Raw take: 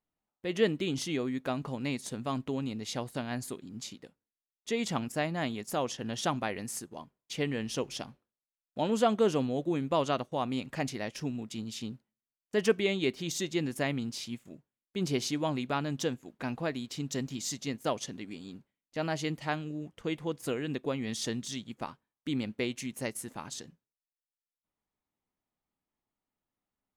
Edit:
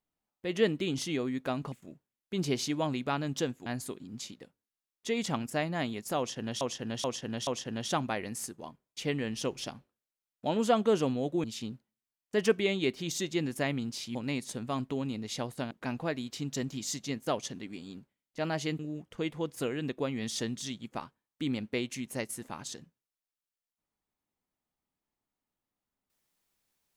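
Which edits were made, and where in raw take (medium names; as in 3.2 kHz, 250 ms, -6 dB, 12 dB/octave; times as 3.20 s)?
1.72–3.28 s: swap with 14.35–16.29 s
5.80–6.23 s: loop, 4 plays
9.77–11.64 s: delete
19.37–19.65 s: delete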